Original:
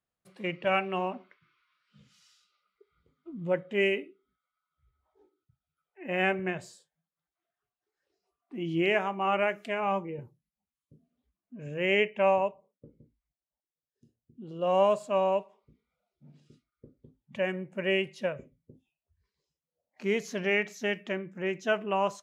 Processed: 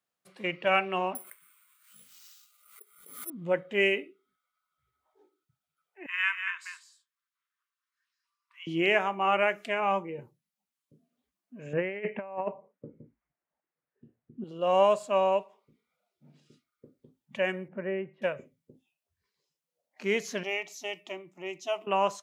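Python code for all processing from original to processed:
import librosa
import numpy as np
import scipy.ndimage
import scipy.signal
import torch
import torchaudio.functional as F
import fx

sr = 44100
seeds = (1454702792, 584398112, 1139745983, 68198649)

y = fx.chain(x, sr, fx.highpass(hz=380.0, slope=6),
    fx.resample_bad(factor=4, down='none', up='zero_stuff'),
    fx.pre_swell(db_per_s=74.0), at=(1.15, 3.3))
y = fx.chain(y, sr, fx.brickwall_highpass(low_hz=940.0),
    fx.high_shelf(hz=4700.0, db=-5.5),
    fx.echo_single(ms=193, db=-7.5), at=(6.06, 8.67))
y = fx.chain(y, sr, fx.lowpass(hz=2100.0, slope=24),
    fx.low_shelf(hz=260.0, db=4.0),
    fx.over_compress(threshold_db=-31.0, ratio=-0.5), at=(11.73, 14.44))
y = fx.chain(y, sr, fx.lowpass(hz=1600.0, slope=24),
    fx.peak_eq(hz=1000.0, db=-7.0, octaves=2.8),
    fx.band_squash(depth_pct=40), at=(17.68, 18.22))
y = fx.chain(y, sr, fx.low_shelf(hz=500.0, db=-6.5),
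    fx.fixed_phaser(hz=320.0, stages=8), at=(20.43, 21.87))
y = scipy.signal.sosfilt(scipy.signal.butter(2, 140.0, 'highpass', fs=sr, output='sos'), y)
y = fx.low_shelf(y, sr, hz=480.0, db=-6.0)
y = y * 10.0 ** (3.5 / 20.0)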